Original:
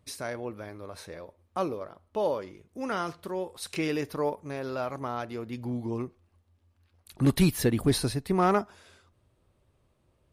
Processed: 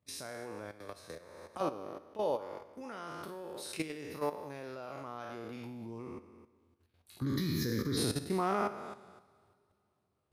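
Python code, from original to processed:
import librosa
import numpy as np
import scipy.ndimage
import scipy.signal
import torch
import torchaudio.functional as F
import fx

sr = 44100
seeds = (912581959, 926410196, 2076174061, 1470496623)

y = fx.spec_trails(x, sr, decay_s=1.2)
y = scipy.signal.sosfilt(scipy.signal.butter(4, 81.0, 'highpass', fs=sr, output='sos'), y)
y = fx.level_steps(y, sr, step_db=13)
y = fx.fixed_phaser(y, sr, hz=2700.0, stages=6, at=(7.21, 7.96), fade=0.02)
y = fx.rev_double_slope(y, sr, seeds[0], early_s=0.56, late_s=3.4, knee_db=-18, drr_db=17.5)
y = fx.band_squash(y, sr, depth_pct=100, at=(0.8, 1.61))
y = F.gain(torch.from_numpy(y), -5.0).numpy()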